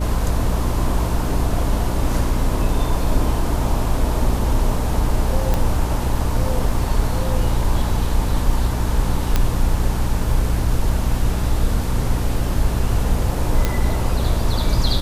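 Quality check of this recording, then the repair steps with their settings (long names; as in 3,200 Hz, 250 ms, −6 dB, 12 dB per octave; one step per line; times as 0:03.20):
mains hum 60 Hz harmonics 5 −23 dBFS
0:05.54: click
0:09.36: click −4 dBFS
0:13.65: click −4 dBFS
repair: click removal
hum removal 60 Hz, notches 5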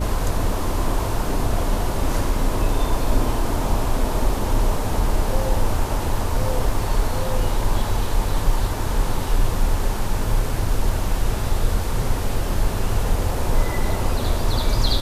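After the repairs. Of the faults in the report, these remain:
none of them is left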